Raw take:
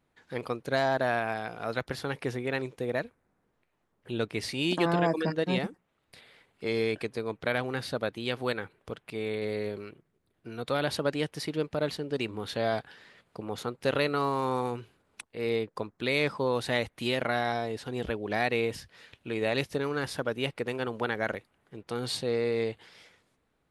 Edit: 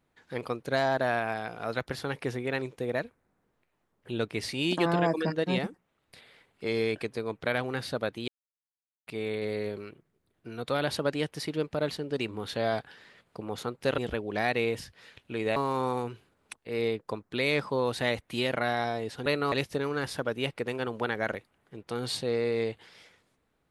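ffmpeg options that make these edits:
ffmpeg -i in.wav -filter_complex "[0:a]asplit=7[link_01][link_02][link_03][link_04][link_05][link_06][link_07];[link_01]atrim=end=8.28,asetpts=PTS-STARTPTS,afade=type=out:start_time=8.276:duration=0.004:curve=hsin[link_08];[link_02]atrim=start=8.28:end=9.07,asetpts=PTS-STARTPTS,volume=0[link_09];[link_03]atrim=start=9.07:end=13.982,asetpts=PTS-STARTPTS,afade=type=in:duration=0.004:curve=hsin[link_10];[link_04]atrim=start=17.938:end=19.522[link_11];[link_05]atrim=start=14.238:end=17.942[link_12];[link_06]atrim=start=13.978:end=14.242[link_13];[link_07]atrim=start=19.518[link_14];[link_08][link_09][link_10]concat=n=3:v=0:a=1[link_15];[link_15][link_11]acrossfade=duration=0.004:curve1=hsin:curve2=hsin[link_16];[link_16][link_12]acrossfade=duration=0.004:curve1=hsin:curve2=hsin[link_17];[link_17][link_13]acrossfade=duration=0.004:curve1=hsin:curve2=hsin[link_18];[link_18][link_14]acrossfade=duration=0.004:curve1=hsin:curve2=hsin" out.wav

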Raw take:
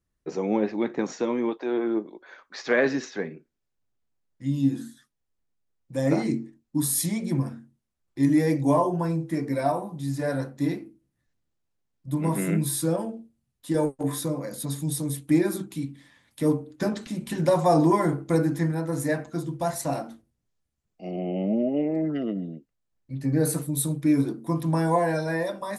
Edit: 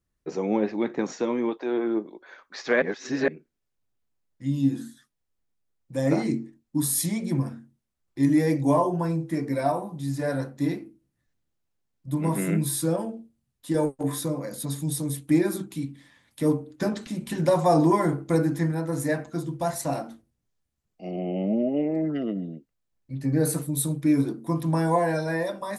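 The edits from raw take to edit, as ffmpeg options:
ffmpeg -i in.wav -filter_complex "[0:a]asplit=3[link_01][link_02][link_03];[link_01]atrim=end=2.822[link_04];[link_02]atrim=start=2.818:end=3.282,asetpts=PTS-STARTPTS,areverse[link_05];[link_03]atrim=start=3.278[link_06];[link_04][link_05]acrossfade=duration=0.004:curve1=hsin:curve2=hsin[link_07];[link_07][link_06]acrossfade=duration=0.004:curve1=hsin:curve2=hsin" out.wav

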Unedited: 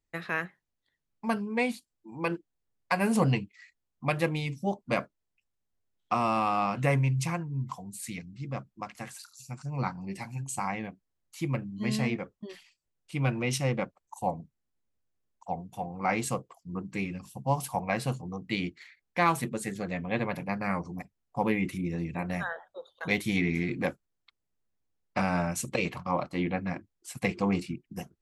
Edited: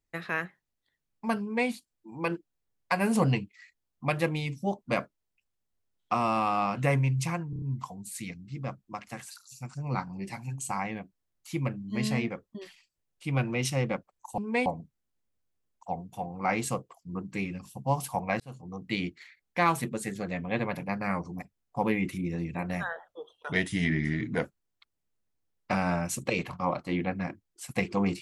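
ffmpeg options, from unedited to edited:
ffmpeg -i in.wav -filter_complex "[0:a]asplit=10[link_01][link_02][link_03][link_04][link_05][link_06][link_07][link_08][link_09][link_10];[link_01]atrim=end=7.532[link_11];[link_02]atrim=start=7.498:end=7.532[link_12];[link_03]atrim=start=7.498:end=7.532[link_13];[link_04]atrim=start=7.498:end=7.532[link_14];[link_05]atrim=start=7.498:end=14.262[link_15];[link_06]atrim=start=1.408:end=1.692[link_16];[link_07]atrim=start=14.258:end=18,asetpts=PTS-STARTPTS,afade=type=out:start_time=3.738:duration=0.004:curve=hsin[link_17];[link_08]atrim=start=18:end=22.674,asetpts=PTS-STARTPTS,afade=type=in:duration=0.45[link_18];[link_09]atrim=start=22.67:end=23.9,asetpts=PTS-STARTPTS,asetrate=39690,aresample=44100[link_19];[link_10]atrim=start=23.896[link_20];[link_11][link_12]acrossfade=duration=0.004:curve1=hsin:curve2=hsin[link_21];[link_21][link_13]acrossfade=duration=0.004:curve1=hsin:curve2=hsin[link_22];[link_22][link_14]acrossfade=duration=0.004:curve1=hsin:curve2=hsin[link_23];[link_23][link_15]acrossfade=duration=0.004:curve1=hsin:curve2=hsin[link_24];[link_24][link_16]acrossfade=duration=0.004:curve1=hsin:curve2=hsin[link_25];[link_17][link_18]concat=n=2:v=0:a=1[link_26];[link_25][link_26]acrossfade=duration=0.004:curve1=hsin:curve2=hsin[link_27];[link_27][link_19]acrossfade=duration=0.004:curve1=hsin:curve2=hsin[link_28];[link_28][link_20]acrossfade=duration=0.004:curve1=hsin:curve2=hsin" out.wav

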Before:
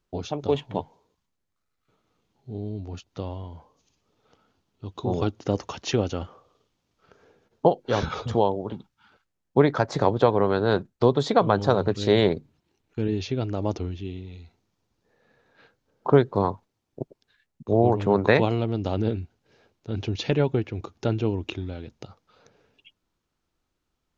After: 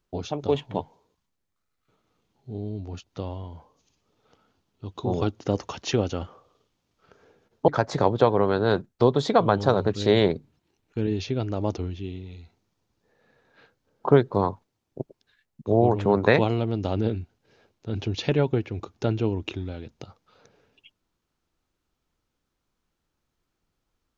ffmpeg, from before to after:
ffmpeg -i in.wav -filter_complex "[0:a]asplit=2[link_01][link_02];[link_01]atrim=end=7.682[link_03];[link_02]atrim=start=9.688[link_04];[link_03][link_04]acrossfade=duration=0.004:curve1=hsin:curve2=hsin" out.wav

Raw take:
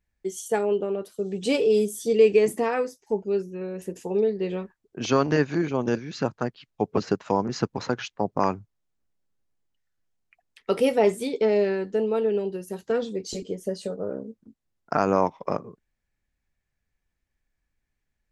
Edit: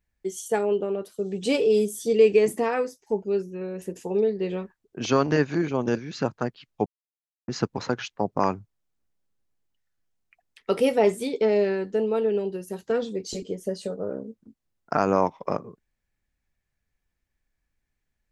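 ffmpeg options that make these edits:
ffmpeg -i in.wav -filter_complex "[0:a]asplit=3[link_01][link_02][link_03];[link_01]atrim=end=6.86,asetpts=PTS-STARTPTS,afade=type=out:start_time=6.856:duration=0.004:curve=hsin[link_04];[link_02]atrim=start=6.86:end=7.48,asetpts=PTS-STARTPTS,volume=0[link_05];[link_03]atrim=start=7.48,asetpts=PTS-STARTPTS,afade=type=in:duration=0.004:curve=hsin[link_06];[link_04][link_05][link_06]concat=n=3:v=0:a=1" out.wav

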